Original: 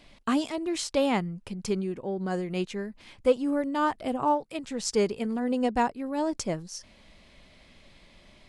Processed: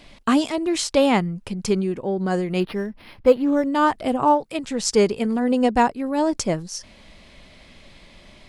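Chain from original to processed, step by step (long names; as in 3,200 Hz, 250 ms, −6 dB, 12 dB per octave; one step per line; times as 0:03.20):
0:02.60–0:03.67: linearly interpolated sample-rate reduction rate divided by 6×
level +7.5 dB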